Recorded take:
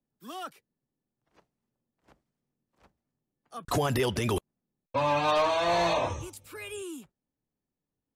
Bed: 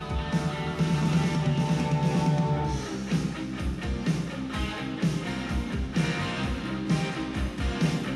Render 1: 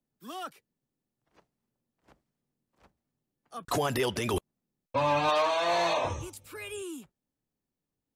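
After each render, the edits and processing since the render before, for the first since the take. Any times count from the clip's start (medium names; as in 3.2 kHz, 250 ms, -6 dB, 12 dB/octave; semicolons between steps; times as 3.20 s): 3.63–4.34 s: bass shelf 160 Hz -9 dB; 5.29–6.05 s: high-pass 410 Hz 6 dB/octave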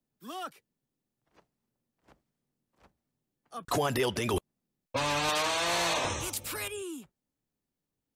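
4.96–6.68 s: spectrum-flattening compressor 2:1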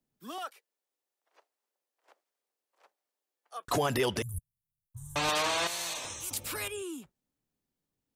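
0.38–3.68 s: high-pass 470 Hz 24 dB/octave; 4.22–5.16 s: inverse Chebyshev band-stop 250–5100 Hz; 5.67–6.31 s: pre-emphasis filter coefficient 0.8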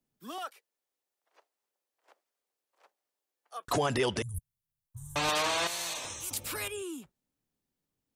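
3.73–4.35 s: steep low-pass 10 kHz 48 dB/octave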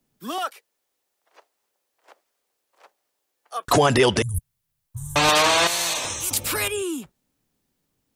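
trim +11.5 dB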